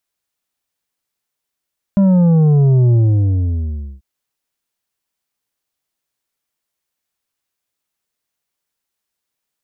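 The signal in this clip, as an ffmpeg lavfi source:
-f lavfi -i "aevalsrc='0.355*clip((2.04-t)/1.08,0,1)*tanh(2.24*sin(2*PI*200*2.04/log(65/200)*(exp(log(65/200)*t/2.04)-1)))/tanh(2.24)':d=2.04:s=44100"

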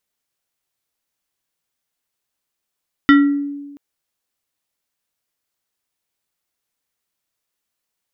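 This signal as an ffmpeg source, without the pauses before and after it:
-f lavfi -i "aevalsrc='0.596*pow(10,-3*t/1.26)*sin(2*PI*285*t+0.99*pow(10,-3*t/0.56)*sin(2*PI*5.79*285*t))':d=0.68:s=44100"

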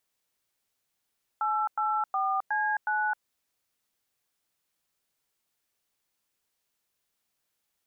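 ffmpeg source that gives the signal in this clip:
-f lavfi -i "aevalsrc='0.0422*clip(min(mod(t,0.365),0.264-mod(t,0.365))/0.002,0,1)*(eq(floor(t/0.365),0)*(sin(2*PI*852*mod(t,0.365))+sin(2*PI*1336*mod(t,0.365)))+eq(floor(t/0.365),1)*(sin(2*PI*852*mod(t,0.365))+sin(2*PI*1336*mod(t,0.365)))+eq(floor(t/0.365),2)*(sin(2*PI*770*mod(t,0.365))+sin(2*PI*1209*mod(t,0.365)))+eq(floor(t/0.365),3)*(sin(2*PI*852*mod(t,0.365))+sin(2*PI*1633*mod(t,0.365)))+eq(floor(t/0.365),4)*(sin(2*PI*852*mod(t,0.365))+sin(2*PI*1477*mod(t,0.365))))':d=1.825:s=44100"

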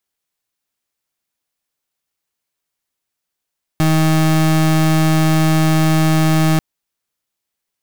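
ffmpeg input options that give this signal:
-f lavfi -i "aevalsrc='0.224*(2*lt(mod(158*t,1),0.32)-1)':d=2.79:s=44100"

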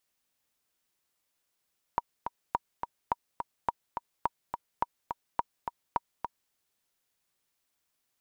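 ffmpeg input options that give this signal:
-f lavfi -i "aevalsrc='pow(10,(-13-6.5*gte(mod(t,2*60/211),60/211))/20)*sin(2*PI*949*mod(t,60/211))*exp(-6.91*mod(t,60/211)/0.03)':d=4.54:s=44100"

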